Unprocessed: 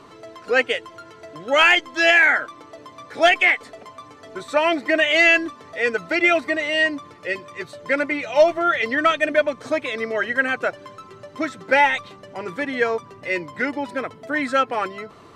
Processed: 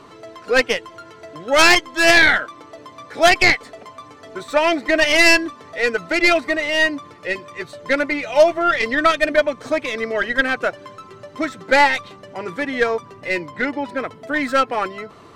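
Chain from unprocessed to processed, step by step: tracing distortion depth 0.13 ms; 13.49–14 high shelf 6900 Hz -8.5 dB; gain +2 dB

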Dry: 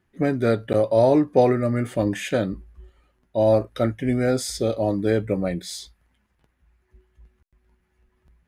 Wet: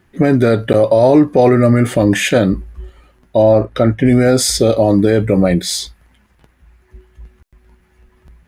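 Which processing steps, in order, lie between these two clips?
3.42–4.06 LPF 2500 Hz 6 dB/oct; maximiser +15.5 dB; gain -1 dB

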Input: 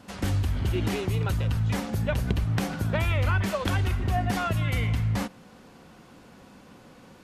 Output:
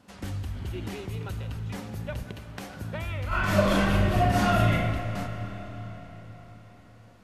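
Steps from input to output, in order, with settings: 2.23–2.77 HPF 330 Hz 6 dB/oct; 3.28–4.72 reverb throw, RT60 1.1 s, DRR -12 dB; reverb RT60 4.7 s, pre-delay 5 ms, DRR 9.5 dB; gain -8 dB

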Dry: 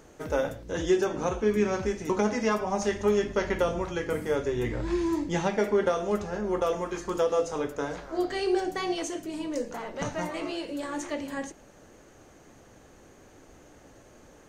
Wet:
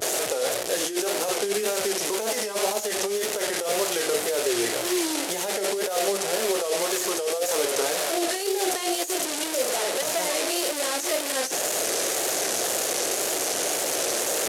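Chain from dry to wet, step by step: delta modulation 64 kbps, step -26.5 dBFS; tilt +4 dB/oct; vibrato 1.9 Hz 94 cents; negative-ratio compressor -28 dBFS, ratio -0.5; HPF 110 Hz 12 dB/oct; band shelf 510 Hz +10 dB 1.3 oct

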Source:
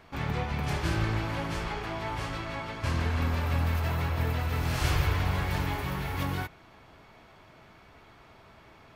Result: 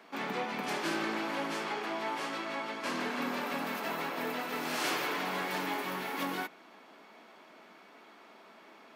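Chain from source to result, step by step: steep high-pass 200 Hz 48 dB/oct

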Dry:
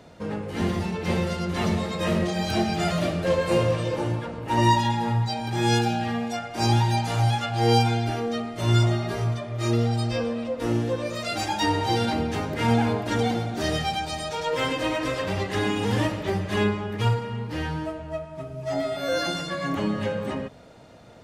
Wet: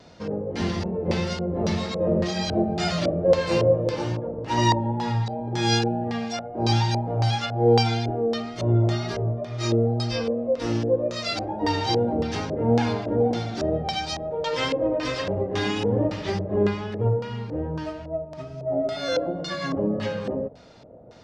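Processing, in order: LFO low-pass square 1.8 Hz 540–5300 Hz; wow and flutter 27 cents; gain -1 dB

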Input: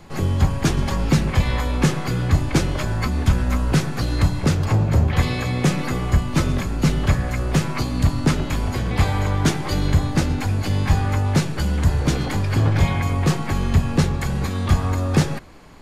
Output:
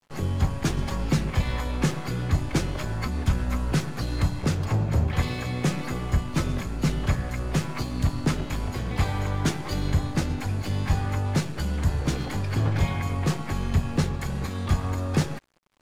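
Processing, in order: crossover distortion -39 dBFS; gain -5.5 dB

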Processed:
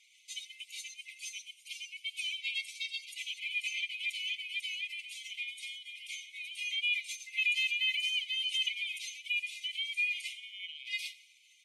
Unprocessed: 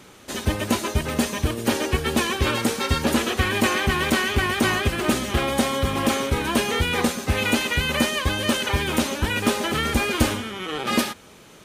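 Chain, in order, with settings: spectral contrast raised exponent 1.8; brick-wall FIR band-pass 2000–13000 Hz; feedback echo 87 ms, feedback 52%, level -19.5 dB; gain -3.5 dB

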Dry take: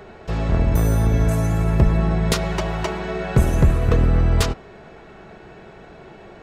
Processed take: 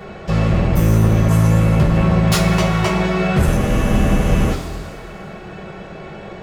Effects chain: hard clip -20.5 dBFS, distortion -7 dB; two-slope reverb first 0.24 s, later 2.1 s, from -18 dB, DRR -4.5 dB; spectral freeze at 3.61, 0.90 s; gain +3 dB

